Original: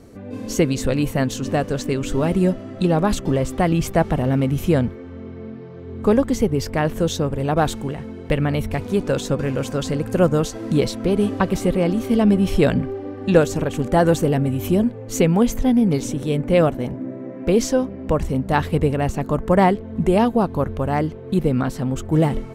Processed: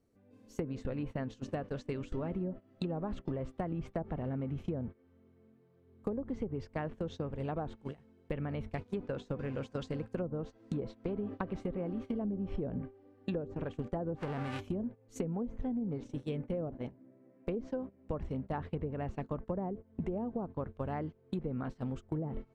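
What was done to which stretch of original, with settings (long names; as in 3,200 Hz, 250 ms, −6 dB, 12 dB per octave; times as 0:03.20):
0:14.15–0:14.59: spectral envelope flattened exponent 0.3
whole clip: noise gate −23 dBFS, range −21 dB; treble cut that deepens with the level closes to 610 Hz, closed at −11.5 dBFS; downward compressor 6 to 1, threshold −25 dBFS; level −8.5 dB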